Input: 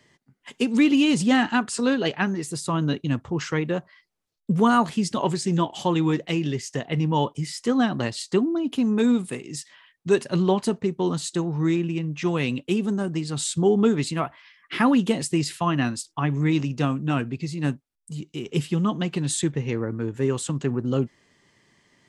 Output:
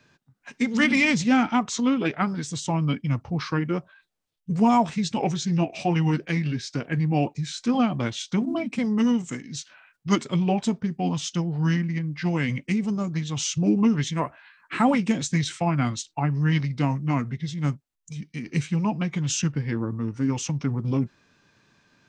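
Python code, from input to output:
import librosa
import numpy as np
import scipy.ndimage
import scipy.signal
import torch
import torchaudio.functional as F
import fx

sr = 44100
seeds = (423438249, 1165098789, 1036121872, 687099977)

y = fx.notch(x, sr, hz=380.0, q=12.0)
y = fx.formant_shift(y, sr, semitones=-4)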